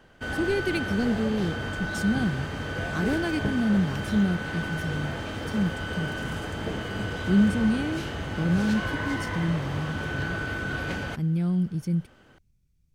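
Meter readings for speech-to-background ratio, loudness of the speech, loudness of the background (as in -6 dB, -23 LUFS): 3.5 dB, -28.0 LUFS, -31.5 LUFS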